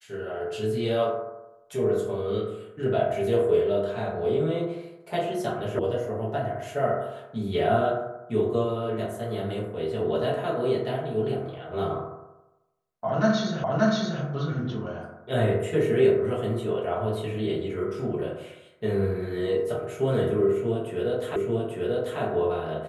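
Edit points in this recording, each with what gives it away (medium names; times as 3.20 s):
5.79 s: sound stops dead
13.64 s: repeat of the last 0.58 s
21.36 s: repeat of the last 0.84 s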